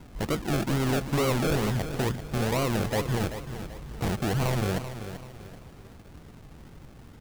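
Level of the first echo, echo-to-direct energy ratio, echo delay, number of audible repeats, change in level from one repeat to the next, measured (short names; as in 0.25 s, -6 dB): -10.5 dB, -10.0 dB, 0.386 s, 3, -8.5 dB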